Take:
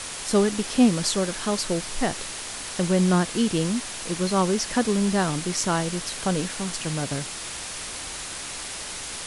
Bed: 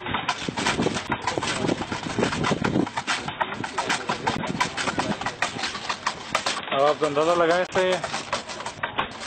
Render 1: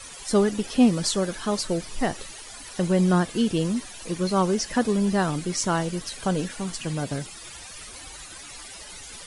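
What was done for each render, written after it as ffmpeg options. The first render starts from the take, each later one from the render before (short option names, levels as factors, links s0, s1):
-af "afftdn=nr=14:nf=-35"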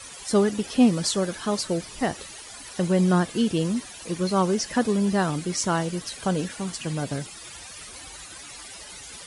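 -af "highpass=47"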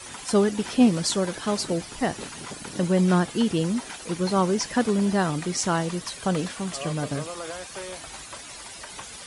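-filter_complex "[1:a]volume=0.158[s0];[0:a][s0]amix=inputs=2:normalize=0"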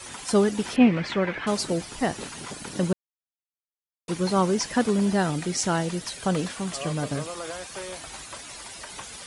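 -filter_complex "[0:a]asettb=1/sr,asplit=3[s0][s1][s2];[s0]atrim=end=0.764[s3];[s1]atrim=start=0.76:end=1.47,asetpts=PTS-STARTPTS,afade=t=in:d=0.004:c=qsin,afade=t=out:st=0.706:d=0.004:c=qsin,lowpass=f=2200:t=q:w=3.5[s4];[s2]atrim=start=1.466[s5];[s3][s4]acrossfade=d=0.004:c1=hsin:c2=qsin[s6];[s6][s5]acrossfade=d=0.004:c1=qsin:c2=hsin,asettb=1/sr,asplit=3[s7][s8][s9];[s7]atrim=end=5.144[s10];[s8]atrim=start=5.14:end=6.23,asetpts=PTS-STARTPTS,afade=t=in:d=0.004:c=qsin,afade=t=out:st=1.086:d=0.004:c=qsin,equalizer=f=1100:t=o:w=0.21:g=-8.5[s11];[s9]atrim=start=6.226[s12];[s10][s11]acrossfade=d=0.004:c1=hsin:c2=qsin[s13];[s13][s12]acrossfade=d=0.004:c1=qsin:c2=hsin,asplit=3[s14][s15][s16];[s14]atrim=end=2.93,asetpts=PTS-STARTPTS,afade=t=out:st=2.926:d=0.004:c=hsin[s17];[s15]atrim=start=2.93:end=4.08,asetpts=PTS-STARTPTS,volume=0[s18];[s16]atrim=start=4.08,asetpts=PTS-STARTPTS,afade=t=in:d=0.004:c=hsin[s19];[s17][s18][s19]concat=n=3:v=0:a=1"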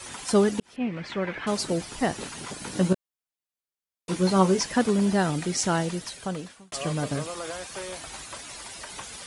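-filter_complex "[0:a]asettb=1/sr,asplit=3[s0][s1][s2];[s0]atrim=end=2.594[s3];[s1]atrim=start=2.59:end=4.63,asetpts=PTS-STARTPTS,afade=t=in:d=0.004:c=qsin,afade=t=out:st=2.036:d=0.004:c=qsin,asplit=2[s4][s5];[s5]adelay=16,volume=0.531[s6];[s4][s6]amix=inputs=2:normalize=0,atrim=end_sample=89964[s7];[s2]atrim=start=4.626[s8];[s3][s7]acrossfade=d=0.004:c1=hsin:c2=qsin[s9];[s9][s8]acrossfade=d=0.004:c1=qsin:c2=hsin,asplit=3[s10][s11][s12];[s10]atrim=end=0.6,asetpts=PTS-STARTPTS,afade=t=out:st=0.596:d=0.004:c=hsin[s13];[s11]atrim=start=0.6:end=6.72,asetpts=PTS-STARTPTS,afade=t=in:d=1.43:c=qsin,afade=t=out:st=5.22:d=0.9[s14];[s12]atrim=start=6.72,asetpts=PTS-STARTPTS,afade=t=in:d=0.004:c=hsin[s15];[s13][s14][s15]concat=n=3:v=0:a=1"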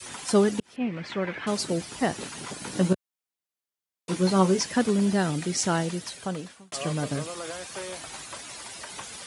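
-af "adynamicequalizer=threshold=0.0126:dfrequency=880:dqfactor=0.89:tfrequency=880:tqfactor=0.89:attack=5:release=100:ratio=0.375:range=2:mode=cutabove:tftype=bell,highpass=80"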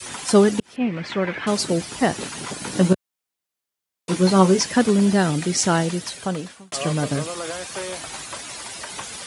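-af "volume=2"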